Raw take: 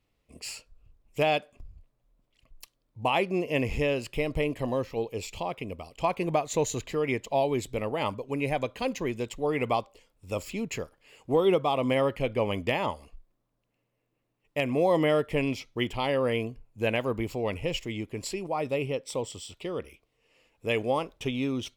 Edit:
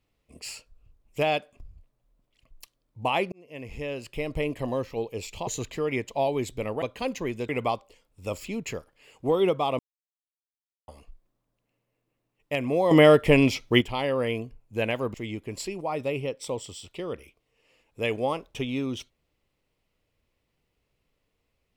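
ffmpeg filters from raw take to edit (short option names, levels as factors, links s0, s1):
-filter_complex "[0:a]asplit=10[s0][s1][s2][s3][s4][s5][s6][s7][s8][s9];[s0]atrim=end=3.32,asetpts=PTS-STARTPTS,afade=t=out:st=3.316:d=0.004:c=hsin[s10];[s1]atrim=start=3.32:end=5.472,asetpts=PTS-STARTPTS,afade=t=in:d=1.17[s11];[s2]atrim=start=6.628:end=7.982[s12];[s3]atrim=start=8.618:end=9.292[s13];[s4]atrim=start=9.538:end=11.84,asetpts=PTS-STARTPTS,afade=t=out:st=2.298:d=0.004:c=hsin[s14];[s5]atrim=start=11.84:end=12.93,asetpts=PTS-STARTPTS,volume=0[s15];[s6]atrim=start=12.93:end=14.962,asetpts=PTS-STARTPTS,afade=t=in:d=0.004:c=hsin[s16];[s7]atrim=start=14.958:end=15.862,asetpts=PTS-STARTPTS,volume=2.82[s17];[s8]atrim=start=15.858:end=17.192[s18];[s9]atrim=start=17.798[s19];[s10][s11]concat=n=2:v=0:a=1[s20];[s20][s12]acrossfade=d=0.004:c1=hsin:c2=hsin[s21];[s21][s13]acrossfade=d=0.004:c1=hsin:c2=hsin[s22];[s14][s15][s16]concat=n=3:v=0:a=1[s23];[s22][s23]acrossfade=d=0.004:c1=hsin:c2=hsin[s24];[s24][s17]acrossfade=d=0.004:c1=hsin:c2=hsin[s25];[s25][s18]acrossfade=d=0.004:c1=hsin:c2=hsin[s26];[s26][s19]acrossfade=d=0.004:c1=hsin:c2=hsin"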